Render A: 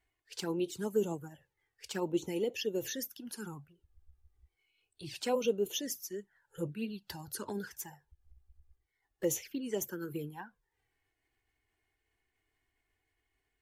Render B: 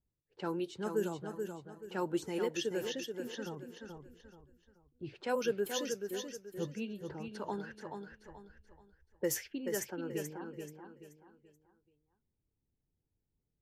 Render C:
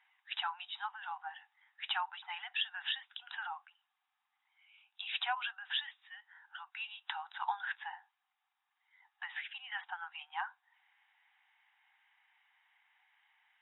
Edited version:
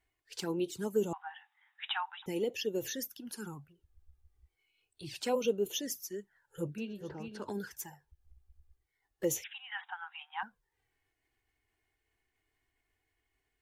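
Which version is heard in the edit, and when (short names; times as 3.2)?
A
1.13–2.26 from C
6.78–7.42 from B
9.44–10.43 from C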